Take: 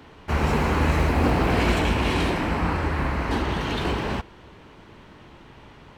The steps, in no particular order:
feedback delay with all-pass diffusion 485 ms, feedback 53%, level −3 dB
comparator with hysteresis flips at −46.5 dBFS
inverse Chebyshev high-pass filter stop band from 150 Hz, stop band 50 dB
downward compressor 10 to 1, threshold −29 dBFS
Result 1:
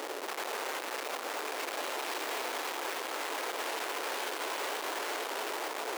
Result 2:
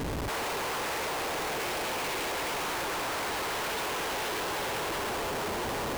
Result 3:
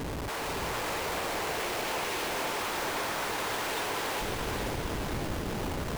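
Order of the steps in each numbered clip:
feedback delay with all-pass diffusion, then downward compressor, then comparator with hysteresis, then inverse Chebyshev high-pass filter
inverse Chebyshev high-pass filter, then downward compressor, then feedback delay with all-pass diffusion, then comparator with hysteresis
inverse Chebyshev high-pass filter, then downward compressor, then comparator with hysteresis, then feedback delay with all-pass diffusion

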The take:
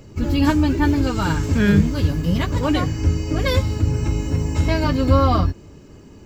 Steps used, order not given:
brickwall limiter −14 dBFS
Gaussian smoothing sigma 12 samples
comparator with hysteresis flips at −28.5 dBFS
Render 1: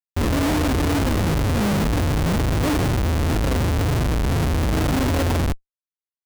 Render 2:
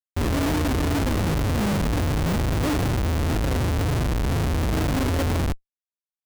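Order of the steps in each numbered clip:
Gaussian smoothing, then comparator with hysteresis, then brickwall limiter
Gaussian smoothing, then brickwall limiter, then comparator with hysteresis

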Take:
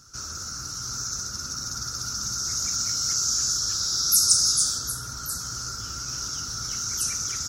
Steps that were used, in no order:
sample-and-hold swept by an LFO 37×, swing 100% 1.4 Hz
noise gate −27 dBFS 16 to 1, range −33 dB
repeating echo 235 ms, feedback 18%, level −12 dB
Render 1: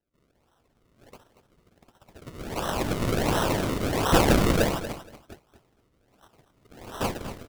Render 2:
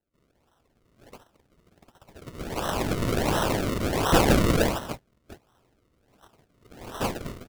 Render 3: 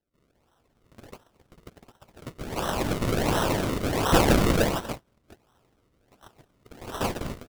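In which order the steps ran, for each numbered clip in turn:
noise gate, then sample-and-hold swept by an LFO, then repeating echo
repeating echo, then noise gate, then sample-and-hold swept by an LFO
sample-and-hold swept by an LFO, then repeating echo, then noise gate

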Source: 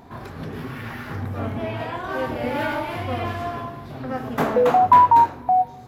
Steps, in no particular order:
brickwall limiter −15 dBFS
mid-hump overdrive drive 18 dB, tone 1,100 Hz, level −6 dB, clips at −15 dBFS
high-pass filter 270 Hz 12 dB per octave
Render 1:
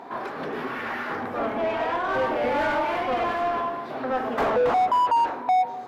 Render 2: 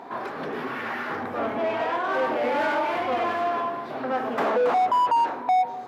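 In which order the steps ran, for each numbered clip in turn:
high-pass filter, then mid-hump overdrive, then brickwall limiter
mid-hump overdrive, then brickwall limiter, then high-pass filter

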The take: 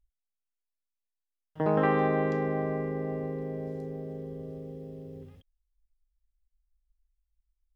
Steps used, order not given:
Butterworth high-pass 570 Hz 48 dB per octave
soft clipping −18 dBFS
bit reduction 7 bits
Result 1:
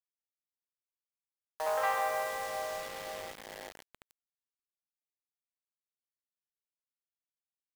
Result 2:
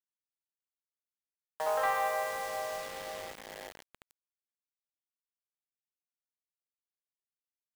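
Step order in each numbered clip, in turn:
soft clipping, then Butterworth high-pass, then bit reduction
Butterworth high-pass, then soft clipping, then bit reduction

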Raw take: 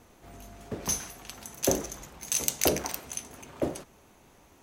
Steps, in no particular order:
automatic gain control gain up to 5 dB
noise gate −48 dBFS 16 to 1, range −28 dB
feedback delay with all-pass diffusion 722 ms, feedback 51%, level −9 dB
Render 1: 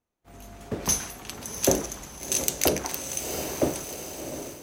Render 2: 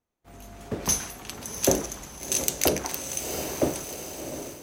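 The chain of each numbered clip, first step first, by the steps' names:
feedback delay with all-pass diffusion, then noise gate, then automatic gain control
feedback delay with all-pass diffusion, then automatic gain control, then noise gate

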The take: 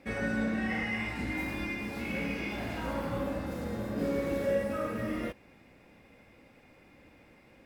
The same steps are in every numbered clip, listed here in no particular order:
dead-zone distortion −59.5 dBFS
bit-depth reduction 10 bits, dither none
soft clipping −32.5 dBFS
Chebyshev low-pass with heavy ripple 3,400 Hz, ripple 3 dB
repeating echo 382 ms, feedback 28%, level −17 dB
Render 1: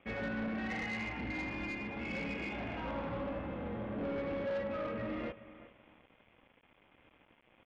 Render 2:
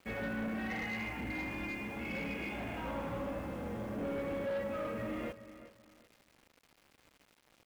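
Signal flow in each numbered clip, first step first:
repeating echo, then dead-zone distortion, then bit-depth reduction, then Chebyshev low-pass with heavy ripple, then soft clipping
Chebyshev low-pass with heavy ripple, then dead-zone distortion, then bit-depth reduction, then repeating echo, then soft clipping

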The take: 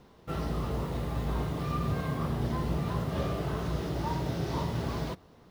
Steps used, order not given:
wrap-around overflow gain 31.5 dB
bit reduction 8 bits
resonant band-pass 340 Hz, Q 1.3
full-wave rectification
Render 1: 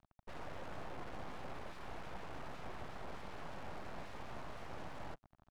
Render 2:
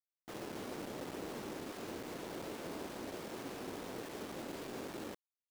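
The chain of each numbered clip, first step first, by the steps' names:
wrap-around overflow, then bit reduction, then resonant band-pass, then full-wave rectification
full-wave rectification, then wrap-around overflow, then resonant band-pass, then bit reduction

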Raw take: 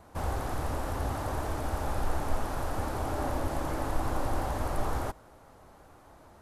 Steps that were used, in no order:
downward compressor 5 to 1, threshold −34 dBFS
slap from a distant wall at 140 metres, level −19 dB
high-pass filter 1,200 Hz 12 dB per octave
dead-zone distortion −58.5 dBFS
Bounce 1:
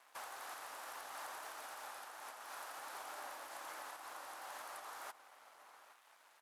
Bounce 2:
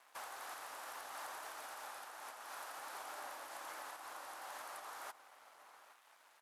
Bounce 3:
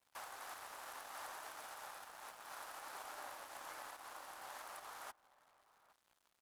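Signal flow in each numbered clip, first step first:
slap from a distant wall, then downward compressor, then dead-zone distortion, then high-pass filter
slap from a distant wall, then dead-zone distortion, then downward compressor, then high-pass filter
downward compressor, then high-pass filter, then dead-zone distortion, then slap from a distant wall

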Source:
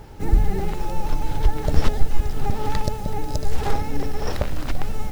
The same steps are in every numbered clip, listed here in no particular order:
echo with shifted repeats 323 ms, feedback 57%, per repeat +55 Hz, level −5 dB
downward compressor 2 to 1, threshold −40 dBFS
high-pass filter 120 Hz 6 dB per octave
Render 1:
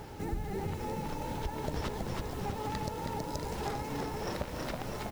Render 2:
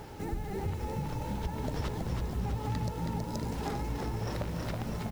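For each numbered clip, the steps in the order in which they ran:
high-pass filter, then echo with shifted repeats, then downward compressor
echo with shifted repeats, then high-pass filter, then downward compressor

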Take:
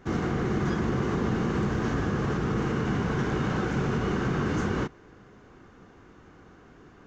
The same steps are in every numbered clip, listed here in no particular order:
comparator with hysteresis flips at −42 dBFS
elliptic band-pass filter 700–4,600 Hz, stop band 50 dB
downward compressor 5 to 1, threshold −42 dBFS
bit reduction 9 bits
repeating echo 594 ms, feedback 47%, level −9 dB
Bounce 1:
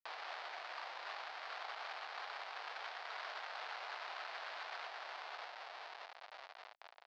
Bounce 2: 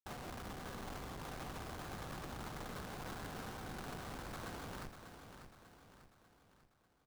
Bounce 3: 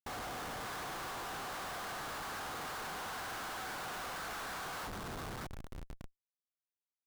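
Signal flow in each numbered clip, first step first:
repeating echo, then comparator with hysteresis, then downward compressor, then bit reduction, then elliptic band-pass filter
elliptic band-pass filter, then downward compressor, then comparator with hysteresis, then bit reduction, then repeating echo
elliptic band-pass filter, then bit reduction, then repeating echo, then comparator with hysteresis, then downward compressor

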